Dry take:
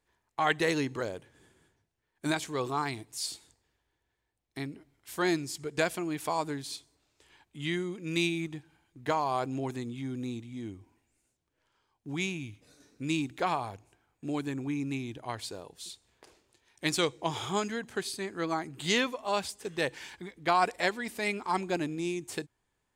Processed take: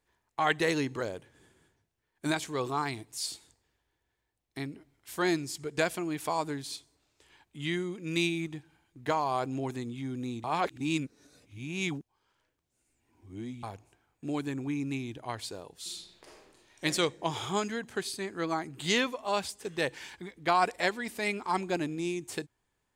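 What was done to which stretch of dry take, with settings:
10.44–13.63 reverse
15.78–16.84 reverb throw, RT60 1 s, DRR -4 dB

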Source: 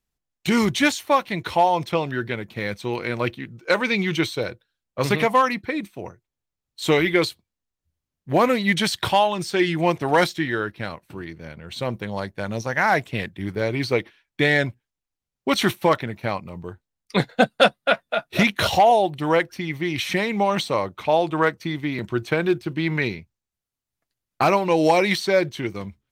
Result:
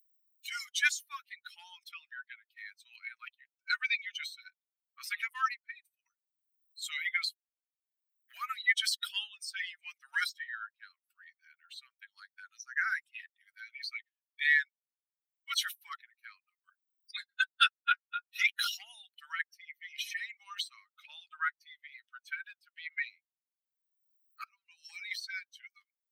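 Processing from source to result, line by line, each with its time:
24.44–25.5 fade in, from -21 dB
whole clip: per-bin expansion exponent 2; Chebyshev high-pass 1300 Hz, order 6; upward compressor, threshold -43 dBFS; gain -1.5 dB

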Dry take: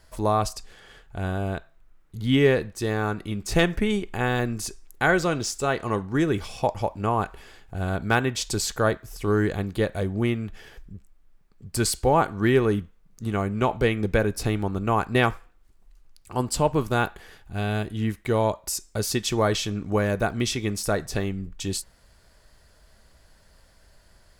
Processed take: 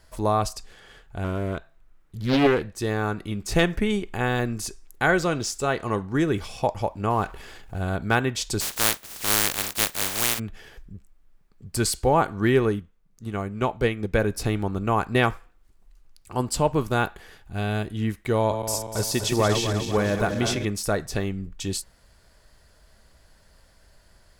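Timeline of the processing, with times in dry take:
1.24–2.78 Doppler distortion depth 0.8 ms
7.1–7.78 G.711 law mismatch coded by mu
8.6–10.38 spectral contrast lowered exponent 0.13
12.69–14.18 upward expander, over -30 dBFS
18.38–20.65 regenerating reverse delay 0.123 s, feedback 72%, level -7 dB

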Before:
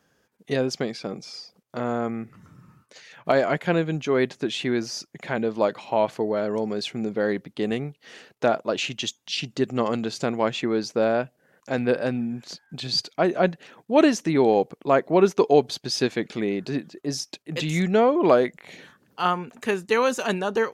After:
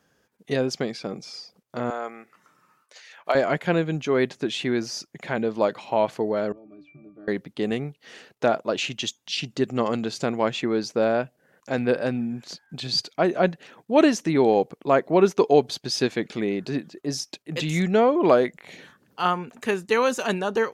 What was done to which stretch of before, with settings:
1.9–3.35 HPF 600 Hz
6.52–7.28 octave resonator D, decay 0.26 s

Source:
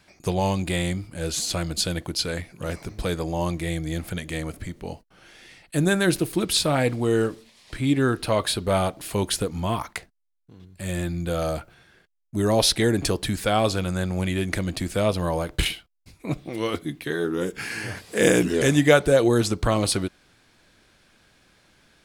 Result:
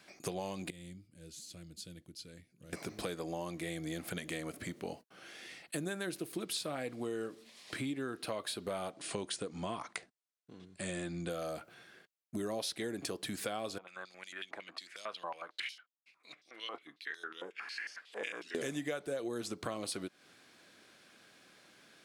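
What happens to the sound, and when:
0.7–2.73 passive tone stack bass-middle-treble 10-0-1
8.91–11.3 brick-wall FIR low-pass 10000 Hz
13.78–18.55 stepped band-pass 11 Hz 880–5500 Hz
whole clip: HPF 210 Hz 12 dB/oct; notch 900 Hz, Q 12; compressor 6:1, threshold -35 dBFS; gain -1.5 dB

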